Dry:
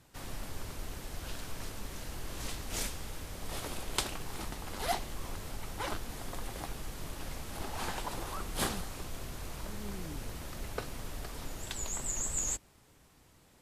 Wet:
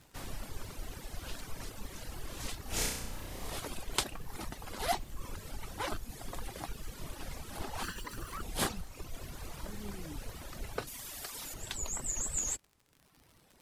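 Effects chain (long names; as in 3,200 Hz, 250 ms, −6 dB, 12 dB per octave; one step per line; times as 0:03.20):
0:07.83–0:08.43: lower of the sound and its delayed copy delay 0.69 ms
reverb reduction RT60 1.3 s
0:10.87–0:11.54: spectral tilt +3 dB per octave
surface crackle 58 per second −47 dBFS
0:02.62–0:03.50: flutter between parallel walls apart 5.6 metres, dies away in 0.79 s
level +1 dB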